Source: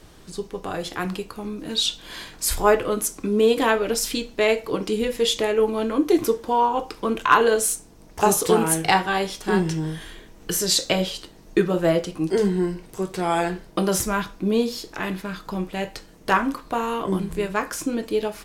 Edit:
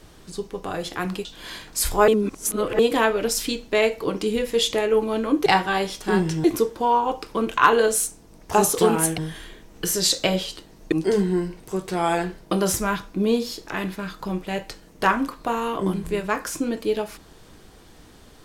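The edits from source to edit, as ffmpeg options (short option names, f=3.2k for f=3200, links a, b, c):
-filter_complex "[0:a]asplit=8[a][b][c][d][e][f][g][h];[a]atrim=end=1.252[i];[b]atrim=start=1.908:end=2.742[j];[c]atrim=start=2.738:end=3.452,asetpts=PTS-STARTPTS,areverse[k];[d]atrim=start=3.448:end=6.122[l];[e]atrim=start=8.858:end=9.842[m];[f]atrim=start=6.118:end=8.862[n];[g]atrim=start=9.838:end=11.582[o];[h]atrim=start=12.178[p];[i][j]acrossfade=d=0.004:c1=hsin:c2=hsin[q];[q][k]acrossfade=d=0.004:c1=hsin:c2=hsin[r];[r][l]acrossfade=d=0.004:c1=hsin:c2=hsin[s];[s][m]acrossfade=d=0.004:c1=hsin:c2=hsin[t];[t][n]acrossfade=d=0.004:c1=hsin:c2=hsin[u];[u][o]acrossfade=d=0.004:c1=hsin:c2=hsin[v];[v][p]acrossfade=d=0.004:c1=hsin:c2=hsin"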